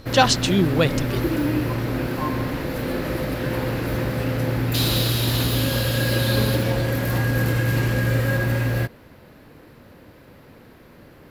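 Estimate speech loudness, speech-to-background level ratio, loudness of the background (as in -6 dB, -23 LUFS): -21.0 LUFS, 2.0 dB, -23.0 LUFS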